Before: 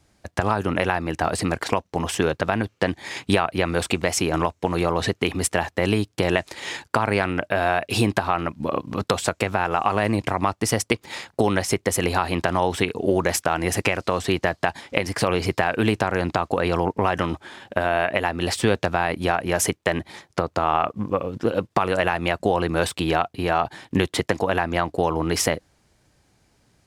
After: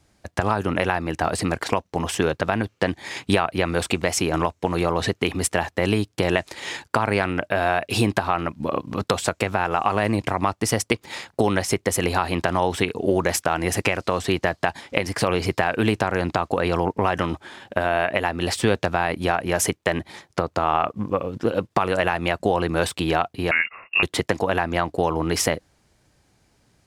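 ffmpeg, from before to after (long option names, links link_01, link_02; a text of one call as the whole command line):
ffmpeg -i in.wav -filter_complex "[0:a]asettb=1/sr,asplit=3[link_01][link_02][link_03];[link_01]atrim=end=23.514[link_04];[link_02]atrim=start=23.51:end=24.03,asetpts=PTS-STARTPTS,afade=type=in:duration=0.004:curve=qsin,afade=type=out:start_time=0.516:duration=0.004:curve=qsin,lowpass=frequency=2500:width_type=q:width=0.5098,lowpass=frequency=2500:width_type=q:width=0.6013,lowpass=frequency=2500:width_type=q:width=0.9,lowpass=frequency=2500:width_type=q:width=2.563,afreqshift=-2900[link_05];[link_03]atrim=start=24.026[link_06];[link_04][link_05]acrossfade=duration=0.004:curve1=hsin:curve2=qsin[link_07];[link_07][link_06]acrossfade=duration=0.004:curve1=qsin:curve2=hsin" out.wav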